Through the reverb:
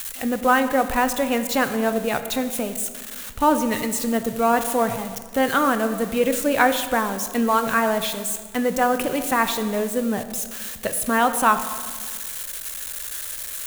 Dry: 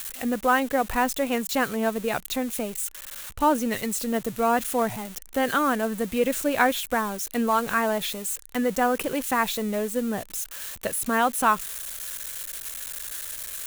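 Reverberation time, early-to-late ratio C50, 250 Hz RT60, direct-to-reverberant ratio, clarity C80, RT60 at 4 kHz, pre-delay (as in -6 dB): 1.7 s, 10.5 dB, 1.9 s, 9.0 dB, 11.5 dB, 1.2 s, 18 ms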